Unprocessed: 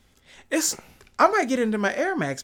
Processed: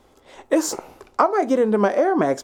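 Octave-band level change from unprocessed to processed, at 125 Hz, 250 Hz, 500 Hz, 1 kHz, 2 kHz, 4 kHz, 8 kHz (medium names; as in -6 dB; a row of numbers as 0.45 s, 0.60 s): no reading, +4.5 dB, +6.0 dB, +2.5 dB, -4.5 dB, -3.5 dB, -3.5 dB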